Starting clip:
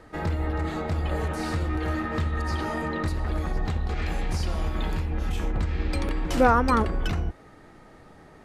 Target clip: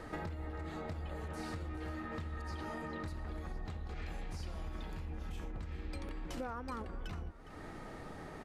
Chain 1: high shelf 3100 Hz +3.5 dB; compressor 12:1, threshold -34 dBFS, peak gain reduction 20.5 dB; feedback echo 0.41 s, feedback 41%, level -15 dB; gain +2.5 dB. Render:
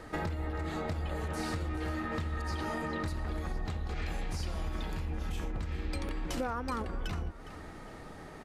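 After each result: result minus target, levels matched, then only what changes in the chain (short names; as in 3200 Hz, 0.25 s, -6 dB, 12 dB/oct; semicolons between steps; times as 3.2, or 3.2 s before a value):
compressor: peak gain reduction -6.5 dB; 8000 Hz band +2.0 dB
change: compressor 12:1, threshold -41.5 dBFS, peak gain reduction 27 dB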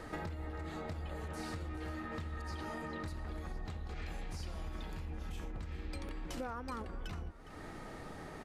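8000 Hz band +2.5 dB
remove: high shelf 3100 Hz +3.5 dB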